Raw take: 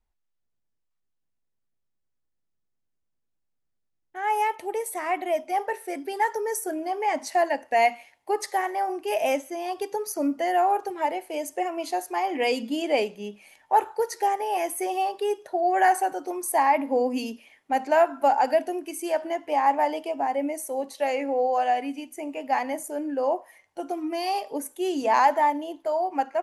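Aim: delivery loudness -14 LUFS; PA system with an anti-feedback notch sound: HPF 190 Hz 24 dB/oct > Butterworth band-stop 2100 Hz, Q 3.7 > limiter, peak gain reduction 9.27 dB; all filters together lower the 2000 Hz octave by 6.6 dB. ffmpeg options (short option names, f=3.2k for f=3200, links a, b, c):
-af "highpass=f=190:w=0.5412,highpass=f=190:w=1.3066,asuperstop=centerf=2100:order=8:qfactor=3.7,equalizer=f=2k:t=o:g=-5,volume=15.5dB,alimiter=limit=-4dB:level=0:latency=1"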